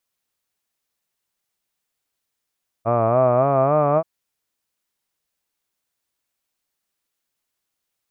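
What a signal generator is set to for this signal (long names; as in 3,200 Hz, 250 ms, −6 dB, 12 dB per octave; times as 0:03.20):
vowel by formant synthesis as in hud, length 1.18 s, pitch 111 Hz, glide +6 semitones, vibrato 3.6 Hz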